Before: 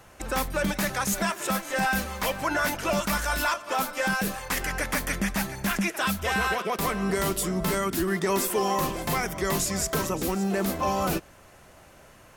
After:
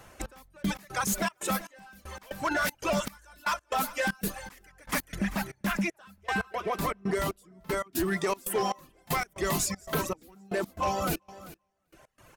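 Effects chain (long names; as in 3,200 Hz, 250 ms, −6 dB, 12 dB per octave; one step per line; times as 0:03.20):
0:05.17–0:07.96: high-shelf EQ 3,400 Hz −7.5 dB
reverb reduction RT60 1.8 s
gain into a clipping stage and back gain 22.5 dB
repeating echo 391 ms, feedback 34%, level −17.5 dB
gate pattern "xx...x.xxx." 117 BPM −24 dB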